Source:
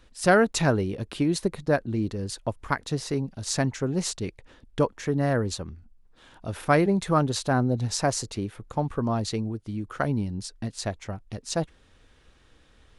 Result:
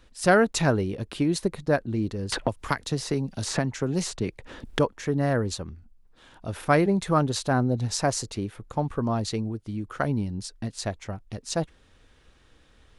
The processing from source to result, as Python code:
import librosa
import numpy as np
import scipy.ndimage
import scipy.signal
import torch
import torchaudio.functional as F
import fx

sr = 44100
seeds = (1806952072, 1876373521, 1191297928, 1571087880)

y = fx.band_squash(x, sr, depth_pct=100, at=(2.32, 4.79))